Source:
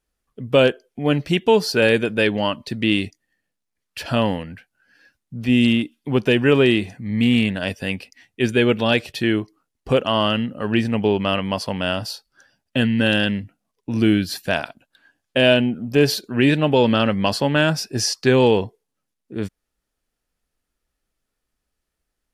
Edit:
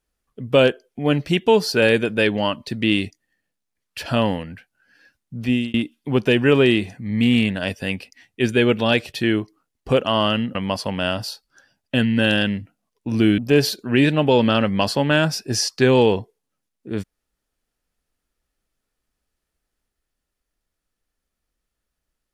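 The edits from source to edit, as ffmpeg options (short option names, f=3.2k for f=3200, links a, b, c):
-filter_complex "[0:a]asplit=4[a][b][c][d];[a]atrim=end=5.74,asetpts=PTS-STARTPTS,afade=t=out:st=5.45:d=0.29[e];[b]atrim=start=5.74:end=10.552,asetpts=PTS-STARTPTS,afade=t=in:d=0.004:c=hsin[f];[c]atrim=start=11.368:end=14.202[g];[d]atrim=start=15.828[h];[e][f]concat=n=2:v=0:a=1[i];[i][g]acrossfade=d=0.004:c1=hsin:c2=hsin[j];[j][h]acrossfade=d=0.004:c1=hsin:c2=hsin"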